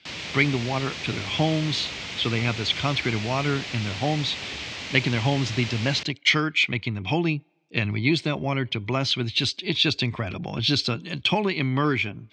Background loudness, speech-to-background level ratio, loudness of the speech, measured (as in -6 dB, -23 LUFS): -32.5 LUFS, 7.5 dB, -25.0 LUFS